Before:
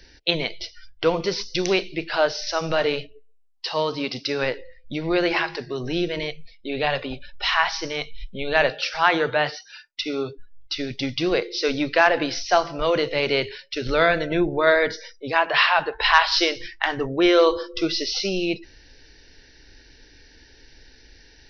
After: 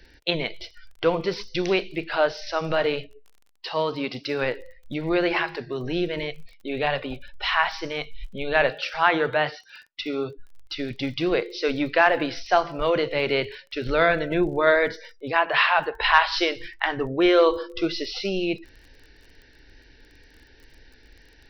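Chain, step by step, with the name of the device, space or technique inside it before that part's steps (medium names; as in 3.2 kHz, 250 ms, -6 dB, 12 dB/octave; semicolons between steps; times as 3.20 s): lo-fi chain (low-pass 3.5 kHz 12 dB/octave; wow and flutter 24 cents; crackle 26 per s -40 dBFS); trim -1 dB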